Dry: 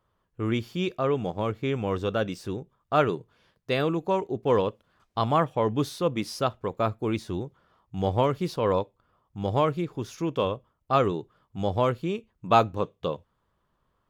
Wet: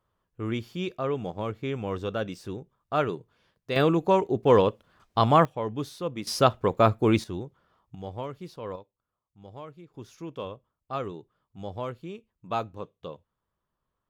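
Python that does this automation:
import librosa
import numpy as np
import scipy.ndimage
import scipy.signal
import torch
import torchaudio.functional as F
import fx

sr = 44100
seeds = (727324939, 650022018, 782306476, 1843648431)

y = fx.gain(x, sr, db=fx.steps((0.0, -3.5), (3.76, 4.0), (5.45, -6.0), (6.27, 6.0), (7.24, -3.0), (7.95, -12.0), (8.76, -19.0), (9.94, -10.0)))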